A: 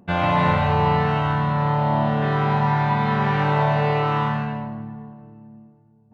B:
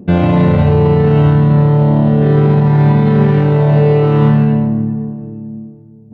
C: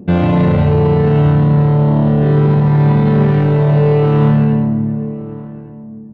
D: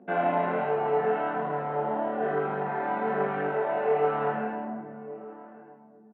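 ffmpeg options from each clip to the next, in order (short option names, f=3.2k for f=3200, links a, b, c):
-af "highpass=62,lowshelf=f=600:t=q:w=1.5:g=12.5,alimiter=limit=-7dB:level=0:latency=1:release=43,volume=4dB"
-filter_complex "[0:a]asoftclip=type=tanh:threshold=-4dB,asplit=2[a][b];[b]adelay=1166,volume=-17dB,highshelf=f=4k:g=-26.2[c];[a][c]amix=inputs=2:normalize=0"
-filter_complex "[0:a]flanger=delay=19.5:depth=4.7:speed=1.2,highpass=f=280:w=0.5412,highpass=f=280:w=1.3066,equalizer=f=310:t=q:w=4:g=-8,equalizer=f=500:t=q:w=4:g=-4,equalizer=f=710:t=q:w=4:g=10,equalizer=f=1.5k:t=q:w=4:g=8,lowpass=f=2.6k:w=0.5412,lowpass=f=2.6k:w=1.3066,asplit=2[a][b];[b]adelay=16,volume=-11dB[c];[a][c]amix=inputs=2:normalize=0,volume=-7dB"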